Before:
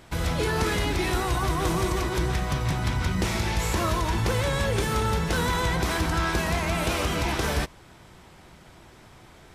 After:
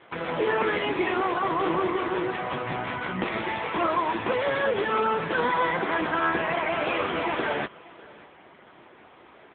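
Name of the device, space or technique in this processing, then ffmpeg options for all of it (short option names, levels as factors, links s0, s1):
satellite phone: -filter_complex "[0:a]highpass=56,asplit=3[s0][s1][s2];[s0]afade=t=out:st=4.1:d=0.02[s3];[s1]equalizer=f=7600:t=o:w=0.62:g=10.5,afade=t=in:st=4.1:d=0.02,afade=t=out:st=5.64:d=0.02[s4];[s2]afade=t=in:st=5.64:d=0.02[s5];[s3][s4][s5]amix=inputs=3:normalize=0,highpass=300,lowpass=3100,aecho=1:1:594:0.0794,volume=1.88" -ar 8000 -c:a libopencore_amrnb -b:a 6700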